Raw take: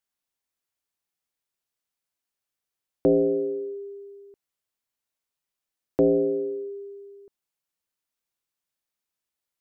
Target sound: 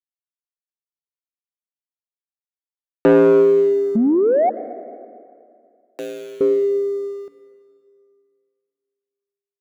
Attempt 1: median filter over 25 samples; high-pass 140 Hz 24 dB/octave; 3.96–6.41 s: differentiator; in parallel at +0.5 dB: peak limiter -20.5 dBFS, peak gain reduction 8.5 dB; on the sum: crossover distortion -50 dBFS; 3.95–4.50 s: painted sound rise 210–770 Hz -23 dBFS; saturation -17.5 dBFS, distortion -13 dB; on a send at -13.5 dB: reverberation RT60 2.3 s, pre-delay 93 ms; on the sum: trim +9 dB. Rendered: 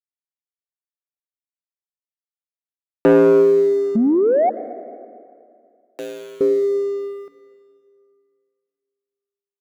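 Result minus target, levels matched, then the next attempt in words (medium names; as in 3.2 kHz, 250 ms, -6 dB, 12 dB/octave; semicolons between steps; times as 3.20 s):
crossover distortion: distortion +7 dB
median filter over 25 samples; high-pass 140 Hz 24 dB/octave; 3.96–6.41 s: differentiator; in parallel at +0.5 dB: peak limiter -20.5 dBFS, peak gain reduction 8.5 dB; on the sum: crossover distortion -57.5 dBFS; 3.95–4.50 s: painted sound rise 210–770 Hz -23 dBFS; saturation -17.5 dBFS, distortion -13 dB; on a send at -13.5 dB: reverberation RT60 2.3 s, pre-delay 93 ms; on the sum: trim +9 dB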